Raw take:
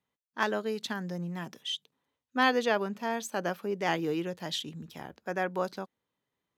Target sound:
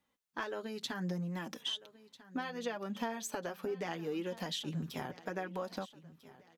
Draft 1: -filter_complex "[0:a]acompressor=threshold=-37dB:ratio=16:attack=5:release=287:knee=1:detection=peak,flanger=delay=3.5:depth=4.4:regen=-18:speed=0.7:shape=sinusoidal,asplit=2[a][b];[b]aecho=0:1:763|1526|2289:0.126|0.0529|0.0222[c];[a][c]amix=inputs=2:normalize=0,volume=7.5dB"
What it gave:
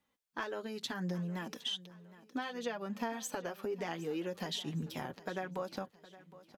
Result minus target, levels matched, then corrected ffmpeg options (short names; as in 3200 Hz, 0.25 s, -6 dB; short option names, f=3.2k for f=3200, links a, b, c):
echo 0.532 s early
-filter_complex "[0:a]acompressor=threshold=-37dB:ratio=16:attack=5:release=287:knee=1:detection=peak,flanger=delay=3.5:depth=4.4:regen=-18:speed=0.7:shape=sinusoidal,asplit=2[a][b];[b]aecho=0:1:1295|2590|3885:0.126|0.0529|0.0222[c];[a][c]amix=inputs=2:normalize=0,volume=7.5dB"